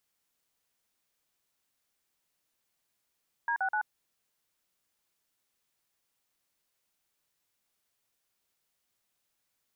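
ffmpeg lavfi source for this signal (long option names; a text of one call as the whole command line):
ffmpeg -f lavfi -i "aevalsrc='0.0335*clip(min(mod(t,0.126),0.082-mod(t,0.126))/0.002,0,1)*(eq(floor(t/0.126),0)*(sin(2*PI*941*mod(t,0.126))+sin(2*PI*1633*mod(t,0.126)))+eq(floor(t/0.126),1)*(sin(2*PI*770*mod(t,0.126))+sin(2*PI*1477*mod(t,0.126)))+eq(floor(t/0.126),2)*(sin(2*PI*852*mod(t,0.126))+sin(2*PI*1477*mod(t,0.126))))':duration=0.378:sample_rate=44100" out.wav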